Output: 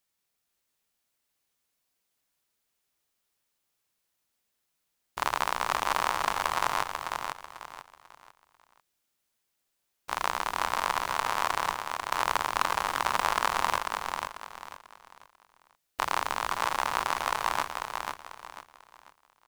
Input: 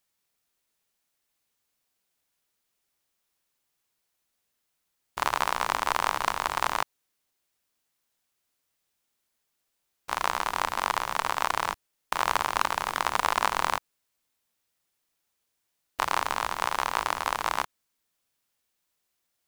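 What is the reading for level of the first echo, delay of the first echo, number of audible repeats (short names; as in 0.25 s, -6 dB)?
-5.0 dB, 0.493 s, 3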